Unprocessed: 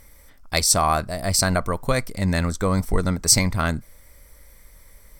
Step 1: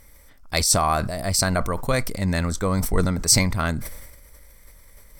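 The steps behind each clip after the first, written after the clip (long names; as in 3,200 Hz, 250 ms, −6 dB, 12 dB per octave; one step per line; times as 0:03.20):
level that may fall only so fast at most 50 dB per second
level −1.5 dB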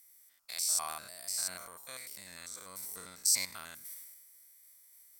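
spectrum averaged block by block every 100 ms
first difference
transient designer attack −1 dB, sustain +5 dB
level −5.5 dB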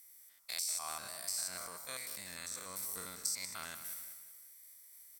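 downward compressor 12 to 1, threshold −36 dBFS, peak gain reduction 13.5 dB
repeating echo 189 ms, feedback 39%, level −11 dB
level +2 dB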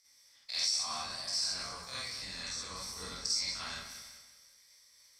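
sub-octave generator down 2 octaves, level −1 dB
low-pass with resonance 5,200 Hz, resonance Q 4
convolution reverb RT60 0.35 s, pre-delay 43 ms, DRR −8.5 dB
level −6 dB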